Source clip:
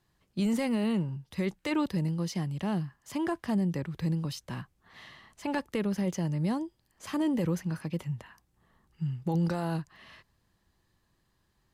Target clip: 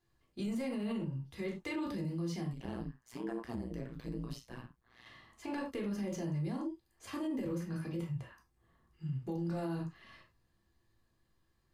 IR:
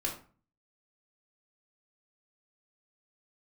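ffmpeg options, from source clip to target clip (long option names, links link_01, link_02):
-filter_complex "[1:a]atrim=start_sample=2205,afade=type=out:start_time=0.16:duration=0.01,atrim=end_sample=7497[link_01];[0:a][link_01]afir=irnorm=-1:irlink=0,asettb=1/sr,asplit=3[link_02][link_03][link_04];[link_02]atrim=end=2.534[link_05];[link_03]atrim=start=2.53:end=5.06,asetpts=PTS-STARTPTS,afade=type=in:duration=0.004:curve=qsin,afade=type=out:start_time=2.526:duration=0.004:curve=qsin,tremolo=f=120:d=1[link_06];[link_04]atrim=start=5.056[link_07];[link_05][link_06]acrossfade=duration=0.004:curve1=hsin:curve2=qsin[link_08];[link_08][link_07]acrossfade=duration=0.004:curve1=qsin:curve2=hsin,alimiter=limit=-21.5dB:level=0:latency=1:release=41,volume=-8.5dB"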